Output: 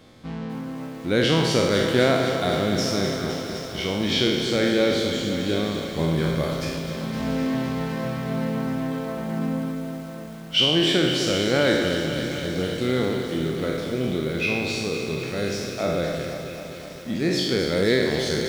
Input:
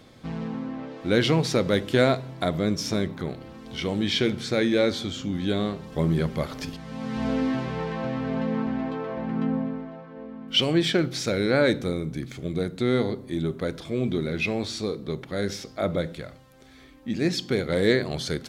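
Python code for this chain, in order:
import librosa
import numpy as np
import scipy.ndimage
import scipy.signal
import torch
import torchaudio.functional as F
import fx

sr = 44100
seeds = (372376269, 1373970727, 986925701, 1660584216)

y = fx.spec_trails(x, sr, decay_s=1.22)
y = fx.echo_wet_highpass(y, sr, ms=688, feedback_pct=70, hz=2200.0, wet_db=-16.0)
y = fx.echo_crushed(y, sr, ms=256, feedback_pct=80, bits=7, wet_db=-9.0)
y = y * librosa.db_to_amplitude(-1.5)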